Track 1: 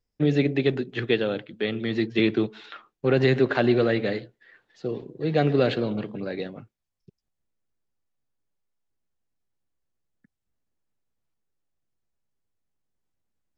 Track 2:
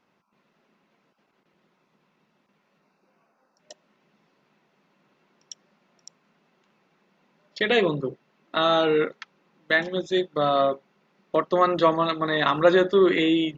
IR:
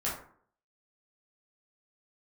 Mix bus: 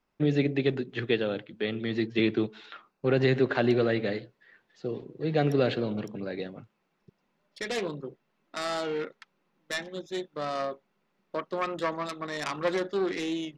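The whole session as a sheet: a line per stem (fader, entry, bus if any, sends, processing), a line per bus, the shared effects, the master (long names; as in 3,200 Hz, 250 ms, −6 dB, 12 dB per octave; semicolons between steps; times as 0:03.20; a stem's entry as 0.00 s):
−3.5 dB, 0.00 s, no send, no processing
−10.0 dB, 0.00 s, no send, phase distortion by the signal itself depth 0.2 ms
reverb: not used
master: no processing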